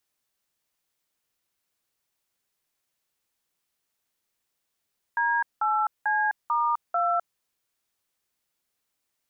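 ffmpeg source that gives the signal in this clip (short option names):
-f lavfi -i "aevalsrc='0.0631*clip(min(mod(t,0.443),0.256-mod(t,0.443))/0.002,0,1)*(eq(floor(t/0.443),0)*(sin(2*PI*941*mod(t,0.443))+sin(2*PI*1633*mod(t,0.443)))+eq(floor(t/0.443),1)*(sin(2*PI*852*mod(t,0.443))+sin(2*PI*1336*mod(t,0.443)))+eq(floor(t/0.443),2)*(sin(2*PI*852*mod(t,0.443))+sin(2*PI*1633*mod(t,0.443)))+eq(floor(t/0.443),3)*(sin(2*PI*941*mod(t,0.443))+sin(2*PI*1209*mod(t,0.443)))+eq(floor(t/0.443),4)*(sin(2*PI*697*mod(t,0.443))+sin(2*PI*1336*mod(t,0.443))))':d=2.215:s=44100"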